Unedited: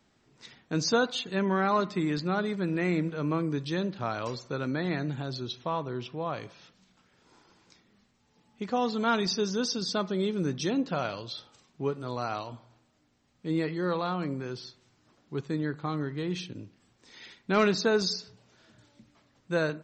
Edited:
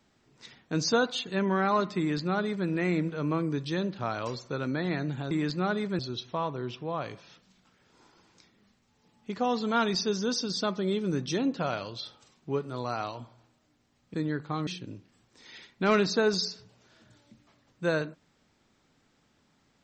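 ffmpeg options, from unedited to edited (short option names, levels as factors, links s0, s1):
-filter_complex "[0:a]asplit=5[s0][s1][s2][s3][s4];[s0]atrim=end=5.312[s5];[s1]atrim=start=1.988:end=2.672[s6];[s2]atrim=start=5.308:end=13.462[s7];[s3]atrim=start=15.478:end=16.012[s8];[s4]atrim=start=16.348[s9];[s5][s6]acrossfade=d=0.004:c1=hsin:c2=hsin[s10];[s10][s7]acrossfade=d=0.004:c1=hsin:c2=hsin[s11];[s11][s8]acrossfade=d=0.004:c1=hsin:c2=hsin[s12];[s12][s9]acrossfade=d=0.004:c1=hsin:c2=hsin"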